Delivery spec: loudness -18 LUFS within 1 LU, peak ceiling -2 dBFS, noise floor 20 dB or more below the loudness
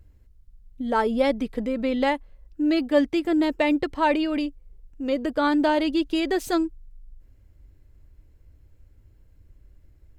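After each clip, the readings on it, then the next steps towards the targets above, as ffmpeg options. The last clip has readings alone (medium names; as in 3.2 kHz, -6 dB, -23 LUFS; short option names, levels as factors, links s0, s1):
loudness -24.0 LUFS; peak level -7.0 dBFS; loudness target -18.0 LUFS
-> -af "volume=2,alimiter=limit=0.794:level=0:latency=1"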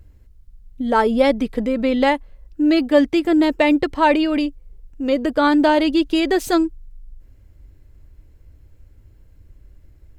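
loudness -18.0 LUFS; peak level -2.0 dBFS; noise floor -50 dBFS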